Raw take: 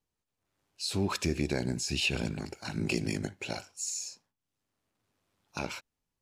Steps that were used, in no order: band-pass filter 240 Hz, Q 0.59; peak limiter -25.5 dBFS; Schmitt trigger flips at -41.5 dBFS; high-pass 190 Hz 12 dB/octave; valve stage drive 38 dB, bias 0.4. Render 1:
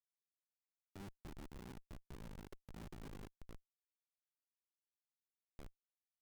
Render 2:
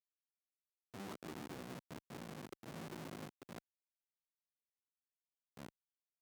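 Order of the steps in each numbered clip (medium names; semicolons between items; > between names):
peak limiter > high-pass > valve stage > band-pass filter > Schmitt trigger; peak limiter > band-pass filter > Schmitt trigger > valve stage > high-pass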